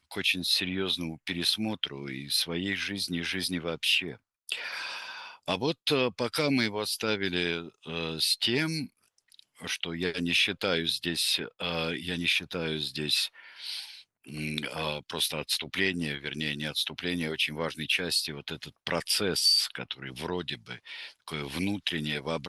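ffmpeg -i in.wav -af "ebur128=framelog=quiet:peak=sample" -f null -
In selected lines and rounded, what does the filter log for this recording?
Integrated loudness:
  I:         -29.1 LUFS
  Threshold: -39.4 LUFS
Loudness range:
  LRA:         3.2 LU
  Threshold: -49.4 LUFS
  LRA low:   -30.9 LUFS
  LRA high:  -27.7 LUFS
Sample peak:
  Peak:      -11.9 dBFS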